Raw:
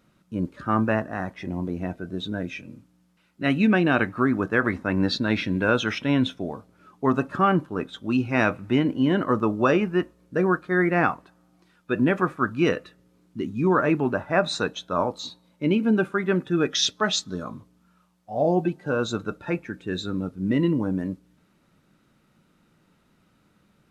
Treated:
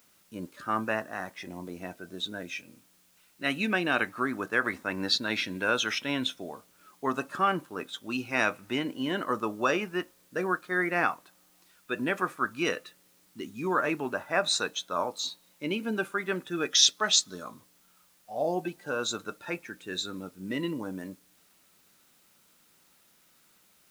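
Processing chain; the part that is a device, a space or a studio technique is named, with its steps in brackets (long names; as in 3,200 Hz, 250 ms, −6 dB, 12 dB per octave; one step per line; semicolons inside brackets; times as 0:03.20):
turntable without a phono preamp (RIAA equalisation recording; white noise bed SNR 33 dB)
level −4.5 dB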